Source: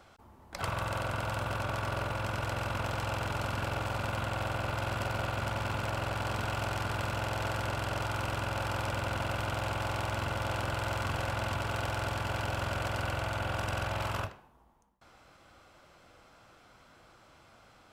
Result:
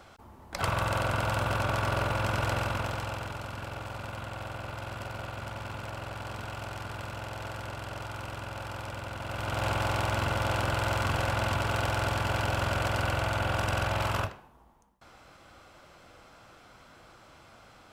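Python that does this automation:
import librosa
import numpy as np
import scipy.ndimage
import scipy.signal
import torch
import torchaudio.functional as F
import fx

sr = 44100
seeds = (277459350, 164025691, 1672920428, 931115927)

y = fx.gain(x, sr, db=fx.line((2.53, 5.0), (3.42, -5.0), (9.19, -5.0), (9.66, 4.5)))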